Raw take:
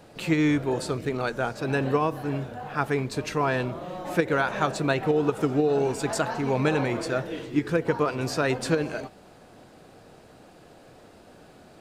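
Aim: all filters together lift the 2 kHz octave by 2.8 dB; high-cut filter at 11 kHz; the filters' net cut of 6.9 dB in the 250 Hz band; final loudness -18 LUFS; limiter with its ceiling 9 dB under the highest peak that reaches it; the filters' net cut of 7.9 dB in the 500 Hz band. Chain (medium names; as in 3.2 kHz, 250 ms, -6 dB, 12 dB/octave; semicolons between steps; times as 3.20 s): low-pass 11 kHz; peaking EQ 250 Hz -6.5 dB; peaking EQ 500 Hz -8 dB; peaking EQ 2 kHz +4.5 dB; trim +13.5 dB; peak limiter -6.5 dBFS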